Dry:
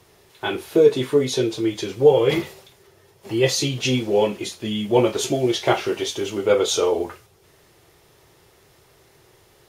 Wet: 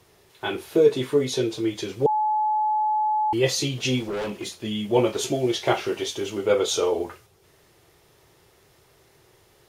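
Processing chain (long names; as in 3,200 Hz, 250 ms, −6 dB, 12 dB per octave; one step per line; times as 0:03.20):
0:02.06–0:03.33: beep over 856 Hz −16.5 dBFS
0:04.00–0:04.50: gain into a clipping stage and back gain 23.5 dB
level −3 dB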